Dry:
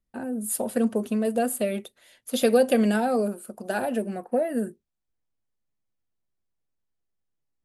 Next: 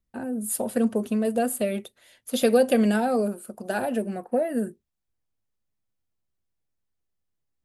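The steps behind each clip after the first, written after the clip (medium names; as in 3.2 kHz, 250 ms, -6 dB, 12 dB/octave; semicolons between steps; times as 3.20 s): peaking EQ 79 Hz +5 dB 1.4 oct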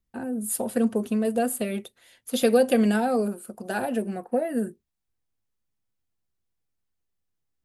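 band-stop 600 Hz, Q 12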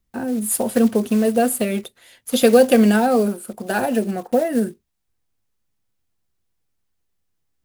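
block-companded coder 5-bit; trim +7 dB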